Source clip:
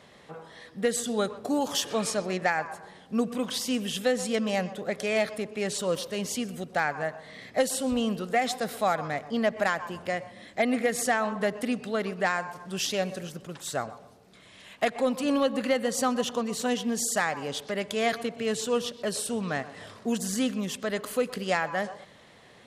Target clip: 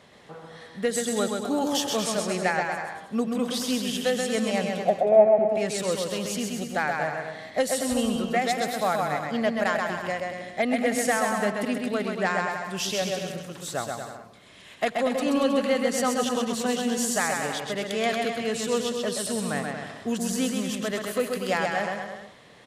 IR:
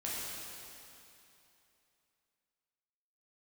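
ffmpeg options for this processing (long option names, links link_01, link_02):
-filter_complex "[0:a]asettb=1/sr,asplit=3[link_01][link_02][link_03];[link_01]atrim=end=4.854[link_04];[link_02]atrim=start=4.85:end=5.49,asetpts=PTS-STARTPTS,afade=type=in:duration=0.004:curve=qsin,afade=type=out:start_time=0.636:duration=0.004:curve=qsin,lowpass=frequency=740:width_type=q:width=7.3[link_05];[link_03]atrim=start=5.486[link_06];[link_04][link_05]acrossfade=duration=0.004:curve1=hsin:curve2=qsin[link_07];[link_07][link_06]acrossfade=duration=0.004:curve1=qsin:curve2=hsin,aecho=1:1:130|234|317.2|383.8|437:0.631|0.398|0.251|0.158|0.1"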